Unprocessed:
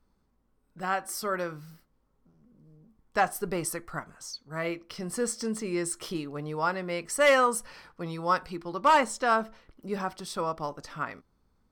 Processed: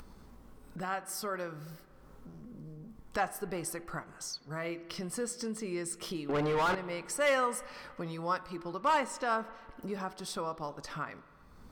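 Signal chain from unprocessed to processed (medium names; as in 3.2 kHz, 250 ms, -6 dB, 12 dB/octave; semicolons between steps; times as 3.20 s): 6.29–6.75 s: overdrive pedal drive 35 dB, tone 2 kHz, clips at -14.5 dBFS; upward compressor, threshold -25 dBFS; spring tank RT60 2.3 s, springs 47/53 ms, chirp 40 ms, DRR 16 dB; trim -7 dB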